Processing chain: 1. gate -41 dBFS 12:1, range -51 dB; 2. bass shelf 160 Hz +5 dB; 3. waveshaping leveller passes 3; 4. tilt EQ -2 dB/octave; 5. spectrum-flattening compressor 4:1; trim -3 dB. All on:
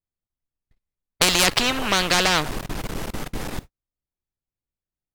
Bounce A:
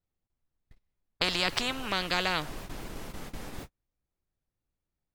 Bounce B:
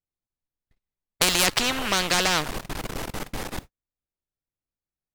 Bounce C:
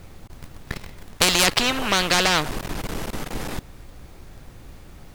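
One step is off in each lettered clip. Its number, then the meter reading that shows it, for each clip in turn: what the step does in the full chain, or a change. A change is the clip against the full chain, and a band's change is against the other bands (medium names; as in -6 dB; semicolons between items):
3, crest factor change +4.5 dB; 2, 8 kHz band +2.0 dB; 1, momentary loudness spread change +4 LU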